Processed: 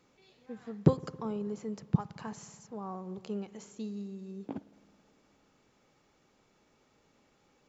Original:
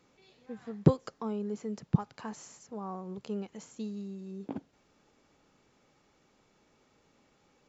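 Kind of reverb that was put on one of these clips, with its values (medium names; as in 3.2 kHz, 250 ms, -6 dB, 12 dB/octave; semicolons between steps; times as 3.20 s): spring tank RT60 2.5 s, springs 54 ms, chirp 75 ms, DRR 17 dB; trim -1 dB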